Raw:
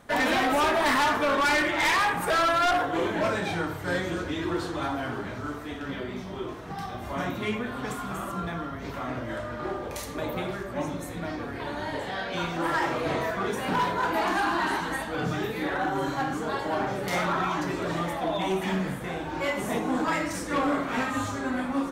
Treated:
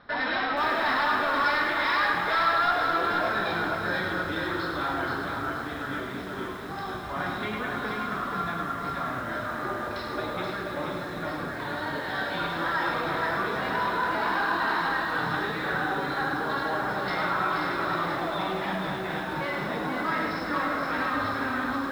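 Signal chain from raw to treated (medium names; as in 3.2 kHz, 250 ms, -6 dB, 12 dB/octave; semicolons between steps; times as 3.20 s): in parallel at -2 dB: compressor with a negative ratio -30 dBFS, ratio -1; on the sum: rippled Chebyshev low-pass 5.4 kHz, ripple 9 dB; two-band feedback delay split 820 Hz, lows 246 ms, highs 105 ms, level -6 dB; bit-crushed delay 479 ms, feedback 35%, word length 8-bit, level -4 dB; trim -1.5 dB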